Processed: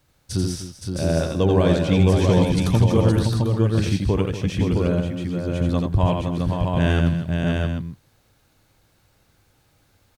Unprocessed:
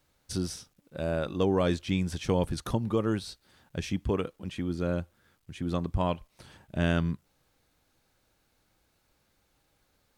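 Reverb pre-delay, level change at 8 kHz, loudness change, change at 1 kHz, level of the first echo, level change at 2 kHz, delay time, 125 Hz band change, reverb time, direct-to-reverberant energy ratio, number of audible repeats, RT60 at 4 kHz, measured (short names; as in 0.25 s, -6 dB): none, +8.5 dB, +10.0 dB, +7.5 dB, -4.0 dB, +7.5 dB, 85 ms, +14.0 dB, none, none, 5, none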